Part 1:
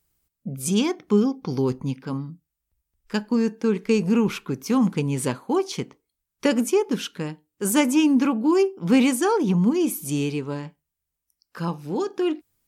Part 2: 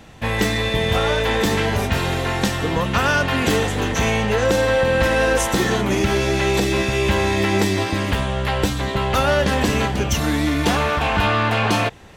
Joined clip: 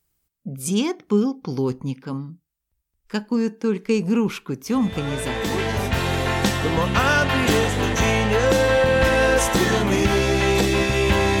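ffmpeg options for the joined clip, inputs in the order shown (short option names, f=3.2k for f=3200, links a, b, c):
-filter_complex "[0:a]apad=whole_dur=11.4,atrim=end=11.4,atrim=end=6.25,asetpts=PTS-STARTPTS[a];[1:a]atrim=start=0.62:end=7.39,asetpts=PTS-STARTPTS[b];[a][b]acrossfade=d=1.62:c1=tri:c2=tri"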